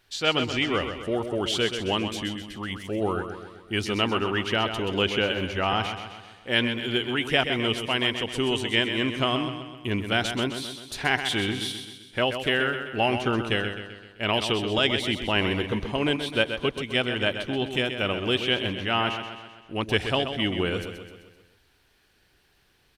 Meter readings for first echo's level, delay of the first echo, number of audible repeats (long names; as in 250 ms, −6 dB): −8.5 dB, 129 ms, 5